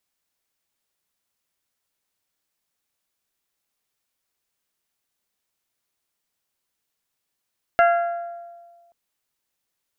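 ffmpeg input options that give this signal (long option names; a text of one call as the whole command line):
ffmpeg -f lavfi -i "aevalsrc='0.251*pow(10,-3*t/1.56)*sin(2*PI*688*t)+0.141*pow(10,-3*t/0.96)*sin(2*PI*1376*t)+0.0794*pow(10,-3*t/0.845)*sin(2*PI*1651.2*t)+0.0447*pow(10,-3*t/0.723)*sin(2*PI*2064*t)+0.0251*pow(10,-3*t/0.591)*sin(2*PI*2752*t)':duration=1.13:sample_rate=44100" out.wav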